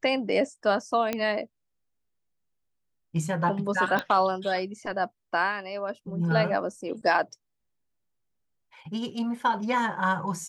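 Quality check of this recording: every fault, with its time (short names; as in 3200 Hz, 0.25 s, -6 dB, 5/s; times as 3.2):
1.13 pop -13 dBFS
3.99 pop -14 dBFS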